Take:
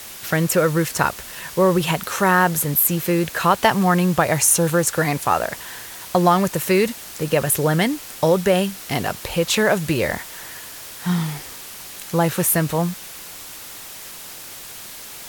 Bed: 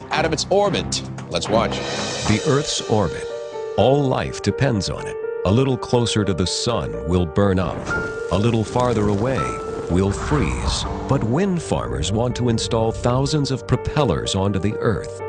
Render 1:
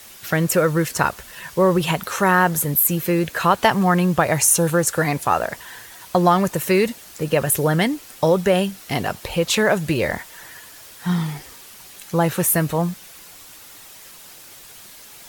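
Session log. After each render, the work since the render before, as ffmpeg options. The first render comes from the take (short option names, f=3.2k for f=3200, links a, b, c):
-af "afftdn=nr=7:nf=-37"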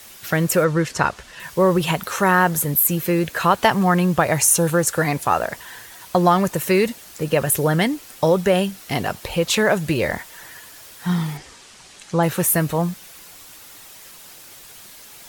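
-filter_complex "[0:a]asettb=1/sr,asplit=3[a][b][c];[a]atrim=end=0.644[d];[b]atrim=start=0.64:end=1.4,asetpts=PTS-STARTPTS,afade=t=in:d=0.004:c=qsin,afade=t=out:st=0.756:d=0.004:c=qsin,lowpass=6.9k[e];[c]atrim=start=1.396[f];[d][e]acrossfade=d=0.004:c1=hsin:c2=qsin[g];[g][f]acrossfade=d=0.004:c1=qsin:c2=hsin,asettb=1/sr,asplit=3[h][i][j];[h]atrim=end=11.374[k];[i]atrim=start=11.37:end=12.23,asetpts=PTS-STARTPTS,afade=t=in:d=0.004:c=qsin,afade=t=out:st=0.856:d=0.004:c=qsin,lowpass=f=8.5k:w=0.5412,lowpass=f=8.5k:w=1.3066[l];[j]atrim=start=12.226[m];[k][l]acrossfade=d=0.004:c1=hsin:c2=qsin[n];[n][m]acrossfade=d=0.004:c1=qsin:c2=hsin"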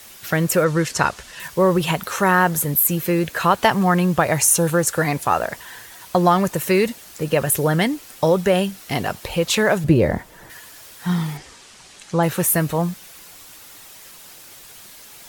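-filter_complex "[0:a]asettb=1/sr,asplit=3[a][b][c];[a]atrim=end=0.664[d];[b]atrim=start=0.66:end=1.48,asetpts=PTS-STARTPTS,afade=t=in:d=0.004:c=qsin,afade=t=out:st=0.816:d=0.004:c=qsin,highshelf=f=3.9k:g=6.5[e];[c]atrim=start=1.476[f];[d][e]acrossfade=d=0.004:c1=hsin:c2=qsin[g];[g][f]acrossfade=d=0.004:c1=qsin:c2=hsin,asettb=1/sr,asplit=3[h][i][j];[h]atrim=end=9.844[k];[i]atrim=start=9.84:end=10.5,asetpts=PTS-STARTPTS,afade=t=in:d=0.004:c=qsin,afade=t=out:st=0.656:d=0.004:c=qsin,tiltshelf=f=900:g=8.5[l];[j]atrim=start=10.496[m];[k][l]acrossfade=d=0.004:c1=hsin:c2=qsin[n];[n][m]acrossfade=d=0.004:c1=qsin:c2=hsin"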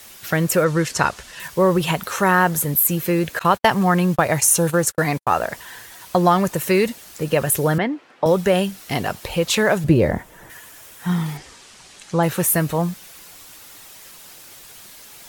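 -filter_complex "[0:a]asettb=1/sr,asplit=3[a][b][c];[a]atrim=end=3.394[d];[b]atrim=start=3.39:end=5.27,asetpts=PTS-STARTPTS,afade=t=in:d=0.004:c=qsin,afade=t=out:st=1.876:d=0.004:c=qsin,agate=range=-60dB:threshold=-25dB:ratio=16:release=100:detection=peak[e];[c]atrim=start=5.266[f];[d][e]acrossfade=d=0.004:c1=hsin:c2=qsin[g];[g][f]acrossfade=d=0.004:c1=qsin:c2=hsin,asettb=1/sr,asplit=3[h][i][j];[h]atrim=end=7.784[k];[i]atrim=start=7.78:end=8.26,asetpts=PTS-STARTPTS,afade=t=in:d=0.004:c=qsin,afade=t=out:st=0.476:d=0.004:c=qsin,highpass=230,lowpass=2k[l];[j]atrim=start=8.256[m];[k][l]acrossfade=d=0.004:c1=hsin:c2=qsin[n];[n][m]acrossfade=d=0.004:c1=qsin:c2=hsin,asettb=1/sr,asplit=3[o][p][q];[o]atrim=end=10.104[r];[p]atrim=start=10.1:end=11.26,asetpts=PTS-STARTPTS,afade=t=in:d=0.004:c=qsin,afade=t=out:st=1.156:d=0.004:c=qsin,equalizer=f=4.5k:t=o:w=0.54:g=-6[s];[q]atrim=start=11.256[t];[r][s]acrossfade=d=0.004:c1=hsin:c2=qsin[u];[u][t]acrossfade=d=0.004:c1=qsin:c2=hsin"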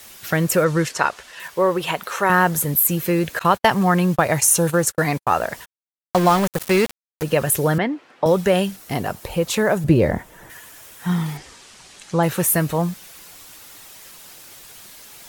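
-filter_complex "[0:a]asettb=1/sr,asplit=3[a][b][c];[a]atrim=end=0.894[d];[b]atrim=start=0.89:end=2.3,asetpts=PTS-STARTPTS,afade=t=in:d=0.004:c=qsin,afade=t=out:st=1.406:d=0.004:c=qsin,bass=f=250:g=-13,treble=f=4k:g=-5[e];[c]atrim=start=2.296[f];[d][e]acrossfade=d=0.004:c1=hsin:c2=qsin[g];[g][f]acrossfade=d=0.004:c1=qsin:c2=hsin,asplit=3[h][i][j];[h]afade=t=out:st=5.64:d=0.02[k];[i]aeval=exprs='val(0)*gte(abs(val(0)),0.0891)':c=same,afade=t=in:st=5.64:d=0.02,afade=t=out:st=7.22:d=0.02[l];[j]afade=t=in:st=7.22:d=0.02[m];[k][l][m]amix=inputs=3:normalize=0,asettb=1/sr,asplit=3[n][o][p];[n]atrim=end=8.764[q];[o]atrim=start=8.76:end=9.88,asetpts=PTS-STARTPTS,afade=t=in:d=0.004:c=qsin,afade=t=out:st=1.116:d=0.004:c=qsin,equalizer=f=3.3k:w=0.56:g=-6[r];[p]atrim=start=9.876[s];[q][r]acrossfade=d=0.004:c1=hsin:c2=qsin[t];[t][s]acrossfade=d=0.004:c1=qsin:c2=hsin"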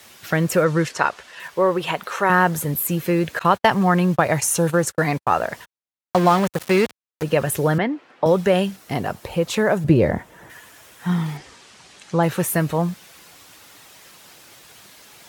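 -af "highpass=69,highshelf=f=6.8k:g=-9"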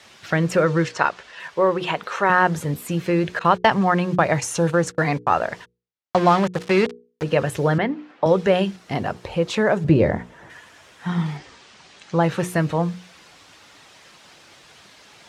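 -af "lowpass=5.8k,bandreject=f=60:t=h:w=6,bandreject=f=120:t=h:w=6,bandreject=f=180:t=h:w=6,bandreject=f=240:t=h:w=6,bandreject=f=300:t=h:w=6,bandreject=f=360:t=h:w=6,bandreject=f=420:t=h:w=6,bandreject=f=480:t=h:w=6"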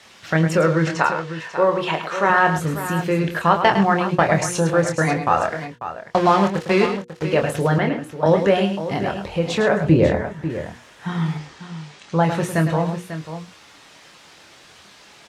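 -filter_complex "[0:a]asplit=2[a][b];[b]adelay=25,volume=-6.5dB[c];[a][c]amix=inputs=2:normalize=0,asplit=2[d][e];[e]aecho=0:1:106|544:0.355|0.266[f];[d][f]amix=inputs=2:normalize=0"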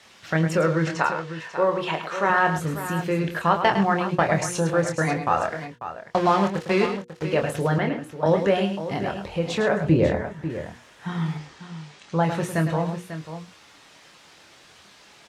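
-af "volume=-4dB"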